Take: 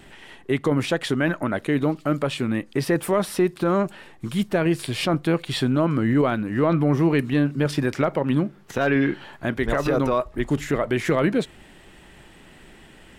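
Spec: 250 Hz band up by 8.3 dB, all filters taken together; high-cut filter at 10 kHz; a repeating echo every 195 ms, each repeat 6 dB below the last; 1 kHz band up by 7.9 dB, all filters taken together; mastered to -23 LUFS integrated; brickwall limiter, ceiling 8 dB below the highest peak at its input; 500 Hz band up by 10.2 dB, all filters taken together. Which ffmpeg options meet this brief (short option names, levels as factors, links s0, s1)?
-af "lowpass=10000,equalizer=f=250:t=o:g=7,equalizer=f=500:t=o:g=9,equalizer=f=1000:t=o:g=7,alimiter=limit=0.447:level=0:latency=1,aecho=1:1:195|390|585|780|975|1170:0.501|0.251|0.125|0.0626|0.0313|0.0157,volume=0.501"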